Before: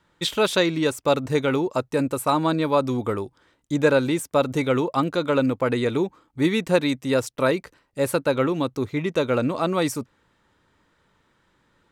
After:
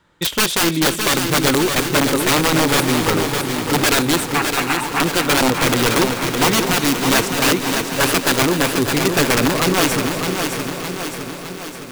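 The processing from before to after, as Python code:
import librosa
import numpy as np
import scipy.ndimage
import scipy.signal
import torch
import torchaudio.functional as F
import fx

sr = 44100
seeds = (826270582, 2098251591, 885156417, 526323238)

p1 = (np.mod(10.0 ** (16.0 / 20.0) * x + 1.0, 2.0) - 1.0) / 10.0 ** (16.0 / 20.0)
p2 = fx.brickwall_bandpass(p1, sr, low_hz=680.0, high_hz=2900.0, at=(4.33, 5.0))
p3 = p2 + fx.echo_feedback(p2, sr, ms=611, feedback_pct=56, wet_db=-6.0, dry=0)
p4 = fx.echo_crushed(p3, sr, ms=249, feedback_pct=80, bits=8, wet_db=-11.5)
y = F.gain(torch.from_numpy(p4), 5.5).numpy()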